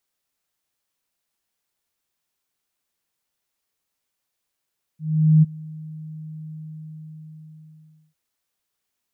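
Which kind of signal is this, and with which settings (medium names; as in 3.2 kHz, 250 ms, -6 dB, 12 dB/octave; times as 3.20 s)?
ADSR sine 156 Hz, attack 435 ms, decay 24 ms, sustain -23.5 dB, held 1.52 s, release 1630 ms -9 dBFS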